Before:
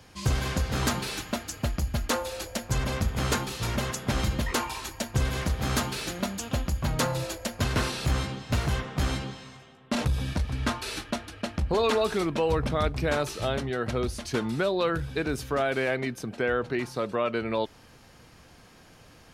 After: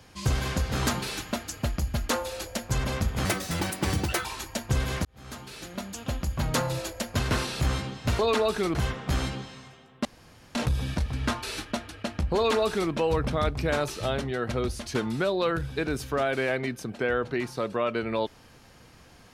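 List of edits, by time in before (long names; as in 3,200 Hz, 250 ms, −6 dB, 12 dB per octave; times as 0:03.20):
0:03.25–0:04.70: play speed 145%
0:05.50–0:06.91: fade in
0:09.94: splice in room tone 0.50 s
0:11.75–0:12.31: duplicate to 0:08.64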